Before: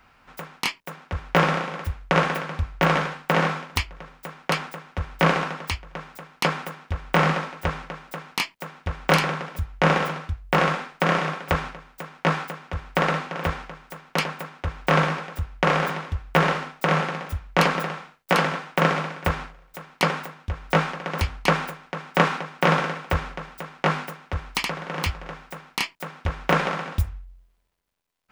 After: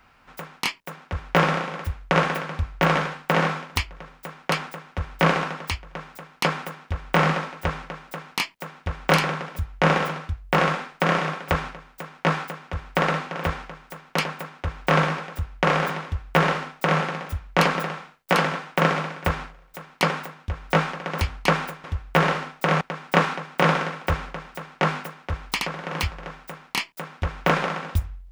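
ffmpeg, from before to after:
ffmpeg -i in.wav -filter_complex "[0:a]asplit=3[link_01][link_02][link_03];[link_01]atrim=end=21.842[link_04];[link_02]atrim=start=16.038:end=17.012[link_05];[link_03]atrim=start=21.838[link_06];[link_04][link_05]acrossfade=duration=0.004:curve1=hsin:curve2=hsin[link_07];[link_07][link_06]acrossfade=duration=0.004:curve1=hsin:curve2=hsin" out.wav

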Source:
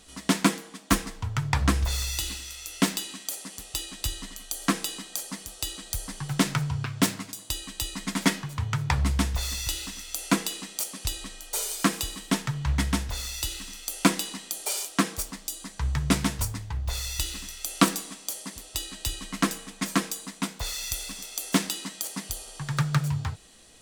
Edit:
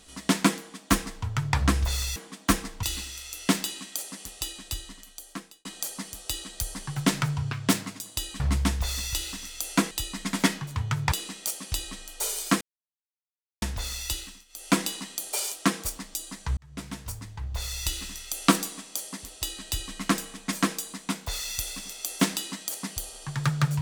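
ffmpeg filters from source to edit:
ffmpeg -i in.wav -filter_complex "[0:a]asplit=12[link_01][link_02][link_03][link_04][link_05][link_06][link_07][link_08][link_09][link_10][link_11][link_12];[link_01]atrim=end=2.162[link_13];[link_02]atrim=start=0.578:end=1.252[link_14];[link_03]atrim=start=2.158:end=4.98,asetpts=PTS-STARTPTS,afade=type=out:start_time=1.452:duration=1.37[link_15];[link_04]atrim=start=4.98:end=7.732,asetpts=PTS-STARTPTS,afade=type=in:duration=0.004:curve=hsin[link_16];[link_05]atrim=start=8.938:end=10.452[link_17];[link_06]atrim=start=7.728:end=8.942[link_18];[link_07]atrim=start=10.448:end=11.94,asetpts=PTS-STARTPTS,afade=type=out:start_time=1.488:duration=0.004:curve=hsin[link_19];[link_08]atrim=start=11.94:end=12.95,asetpts=PTS-STARTPTS,volume=0[link_20];[link_09]atrim=start=12.95:end=13.78,asetpts=PTS-STARTPTS,afade=type=in:duration=0.004:curve=hsin,afade=type=out:start_time=0.5:duration=0.33:silence=0.133352[link_21];[link_10]atrim=start=13.78:end=13.81,asetpts=PTS-STARTPTS,volume=-17.5dB[link_22];[link_11]atrim=start=13.81:end=15.9,asetpts=PTS-STARTPTS,afade=type=in:duration=0.33:silence=0.133352,afade=type=out:start_time=2.086:duration=0.004:curve=hsin[link_23];[link_12]atrim=start=15.9,asetpts=PTS-STARTPTS,afade=type=in:duration=1.31[link_24];[link_13][link_14]acrossfade=duration=0.004:curve1=hsin:curve2=hsin[link_25];[link_15][link_16]concat=n=2:v=0:a=1[link_26];[link_25][link_26]acrossfade=duration=0.004:curve1=hsin:curve2=hsin[link_27];[link_27][link_17]acrossfade=duration=0.004:curve1=hsin:curve2=hsin[link_28];[link_28][link_18]acrossfade=duration=0.004:curve1=hsin:curve2=hsin[link_29];[link_19][link_20][link_21][link_22][link_23][link_24]concat=n=6:v=0:a=1[link_30];[link_29][link_30]acrossfade=duration=0.004:curve1=hsin:curve2=hsin" out.wav

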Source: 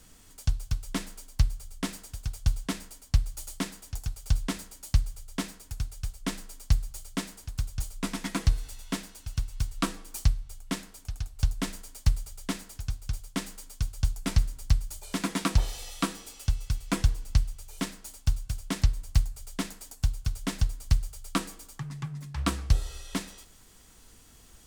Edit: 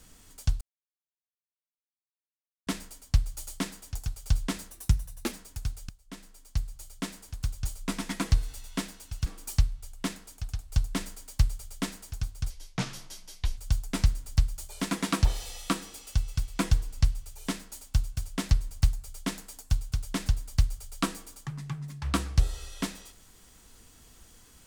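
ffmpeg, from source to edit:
ffmpeg -i in.wav -filter_complex "[0:a]asplit=9[link_01][link_02][link_03][link_04][link_05][link_06][link_07][link_08][link_09];[link_01]atrim=end=0.61,asetpts=PTS-STARTPTS,afade=type=out:start_time=0.606:duration=0.004:curve=hsin[link_10];[link_02]atrim=start=0.61:end=2.67,asetpts=PTS-STARTPTS,volume=0[link_11];[link_03]atrim=start=2.67:end=4.704,asetpts=PTS-STARTPTS,afade=type=in:duration=0.004:curve=hsin[link_12];[link_04]atrim=start=4.7:end=5.47,asetpts=PTS-STARTPTS,asetrate=54684,aresample=44100[link_13];[link_05]atrim=start=5.466:end=6.04,asetpts=PTS-STARTPTS,afade=type=out:start_time=0.57:duration=0.004:curve=hsin:silence=0.1[link_14];[link_06]atrim=start=6.04:end=9.412,asetpts=PTS-STARTPTS,afade=type=in:duration=1.59:silence=0.1[link_15];[link_07]atrim=start=9.928:end=13.174[link_16];[link_08]atrim=start=13.17:end=13.9,asetpts=PTS-STARTPTS,asetrate=29988,aresample=44100[link_17];[link_09]atrim=start=13.896[link_18];[link_10][link_11][link_12]concat=n=3:v=0:a=1[link_19];[link_19][link_13]acrossfade=duration=0.004:curve1=hsin:curve2=hsin[link_20];[link_14][link_15]concat=n=2:v=0:a=1[link_21];[link_20][link_21]acrossfade=duration=0.004:curve1=hsin:curve2=hsin[link_22];[link_22][link_16]acrossfade=duration=0.004:curve1=hsin:curve2=hsin[link_23];[link_23][link_17]acrossfade=duration=0.004:curve1=hsin:curve2=hsin[link_24];[link_24][link_18]acrossfade=duration=0.004:curve1=hsin:curve2=hsin" out.wav

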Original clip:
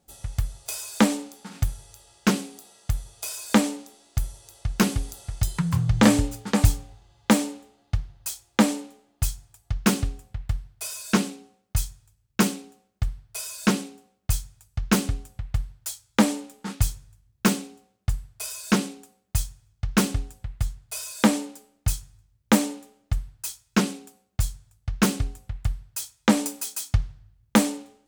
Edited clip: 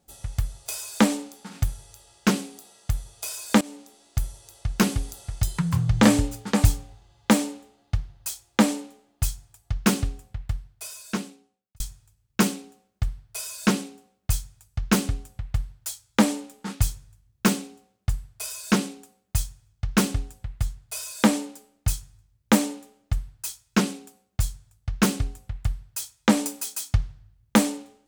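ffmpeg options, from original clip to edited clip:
ffmpeg -i in.wav -filter_complex "[0:a]asplit=3[link_01][link_02][link_03];[link_01]atrim=end=3.61,asetpts=PTS-STARTPTS,afade=type=out:start_time=3.606:duration=0.004:curve=hsin:silence=0.1[link_04];[link_02]atrim=start=3.61:end=11.8,asetpts=PTS-STARTPTS,afade=type=in:duration=0.57:curve=qsin:silence=0.1,afade=type=out:start_time=6.64:duration=1.55[link_05];[link_03]atrim=start=11.8,asetpts=PTS-STARTPTS,afade=type=in:duration=0.004:curve=hsin[link_06];[link_04][link_05][link_06]concat=n=3:v=0:a=1" out.wav

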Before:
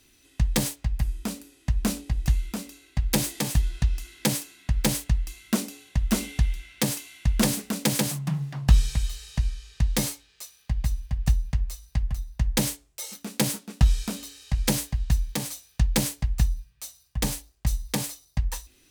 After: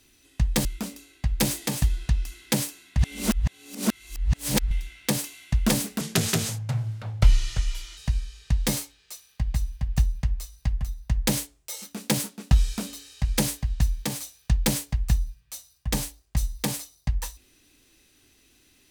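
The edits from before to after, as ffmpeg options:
ffmpeg -i in.wav -filter_complex "[0:a]asplit=6[link_01][link_02][link_03][link_04][link_05][link_06];[link_01]atrim=end=0.652[link_07];[link_02]atrim=start=2.378:end=4.722[link_08];[link_03]atrim=start=4.718:end=6.442,asetpts=PTS-STARTPTS,areverse[link_09];[link_04]atrim=start=6.438:end=7.744[link_10];[link_05]atrim=start=7.74:end=9.27,asetpts=PTS-STARTPTS,asetrate=34398,aresample=44100[link_11];[link_06]atrim=start=9.266[link_12];[link_07][link_08]acrossfade=duration=0.004:curve1=hsin:curve2=hsin[link_13];[link_13][link_09]acrossfade=duration=0.004:curve1=hsin:curve2=hsin[link_14];[link_14][link_10]acrossfade=duration=0.004:curve1=hsin:curve2=hsin[link_15];[link_15][link_11]acrossfade=duration=0.004:curve1=hsin:curve2=hsin[link_16];[link_16][link_12]acrossfade=duration=0.004:curve1=hsin:curve2=hsin" out.wav

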